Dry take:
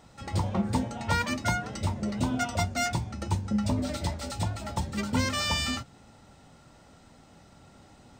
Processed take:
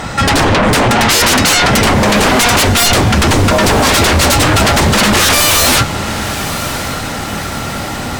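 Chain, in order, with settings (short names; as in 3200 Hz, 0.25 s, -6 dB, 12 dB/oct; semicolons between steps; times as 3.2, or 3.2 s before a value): bell 1700 Hz +7.5 dB 1.4 oct; in parallel at -1 dB: negative-ratio compressor -31 dBFS, ratio -1; on the sum: sine folder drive 18 dB, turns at -9 dBFS; diffused feedback echo 1.076 s, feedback 55%, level -12 dB; gain +2 dB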